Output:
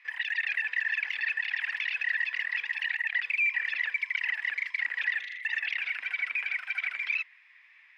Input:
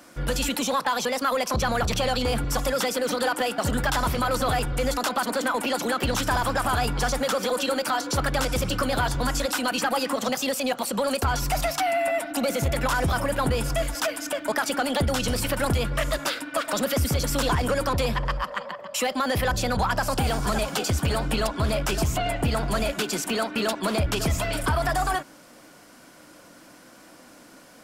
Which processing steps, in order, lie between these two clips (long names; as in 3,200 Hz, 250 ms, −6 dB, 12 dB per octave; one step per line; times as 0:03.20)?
flat-topped band-pass 610 Hz, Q 2.4
change of speed 3.49×